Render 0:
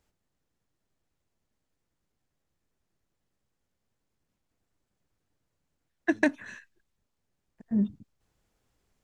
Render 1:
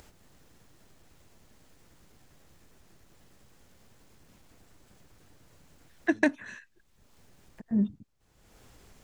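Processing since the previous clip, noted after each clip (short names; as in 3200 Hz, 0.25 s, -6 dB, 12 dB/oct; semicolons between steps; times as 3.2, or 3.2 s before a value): upward compressor, threshold -39 dBFS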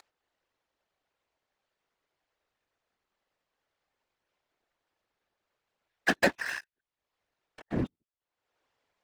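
three-band isolator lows -22 dB, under 420 Hz, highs -16 dB, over 4700 Hz; sample leveller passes 5; whisperiser; gain -6.5 dB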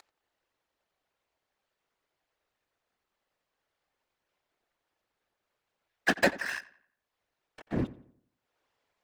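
darkening echo 88 ms, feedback 41%, low-pass 3100 Hz, level -18 dB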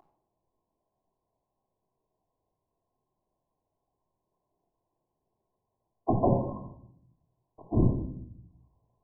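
octaver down 1 oct, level -1 dB; brick-wall FIR low-pass 1100 Hz; reverb RT60 0.70 s, pre-delay 3 ms, DRR -0.5 dB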